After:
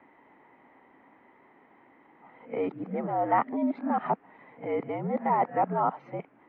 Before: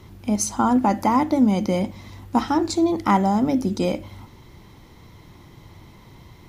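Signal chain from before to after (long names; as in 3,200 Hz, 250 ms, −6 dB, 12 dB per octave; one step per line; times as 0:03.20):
played backwards from end to start
single-sideband voice off tune −72 Hz 360–2,300 Hz
level −4 dB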